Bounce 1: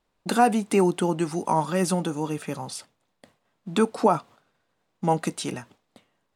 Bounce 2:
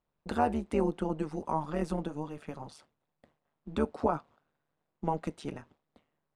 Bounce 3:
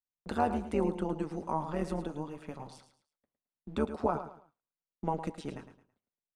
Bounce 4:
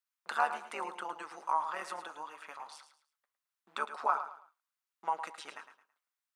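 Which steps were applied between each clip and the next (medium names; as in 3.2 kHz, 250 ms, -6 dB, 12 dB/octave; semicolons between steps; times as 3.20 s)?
low-pass 1.7 kHz 6 dB/octave; AM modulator 150 Hz, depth 70%; trim -4.5 dB
gate -57 dBFS, range -23 dB; on a send: feedback delay 109 ms, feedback 29%, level -11 dB; on the sum: trim -1.5 dB
resonant high-pass 1.2 kHz, resonance Q 1.9; trim +3 dB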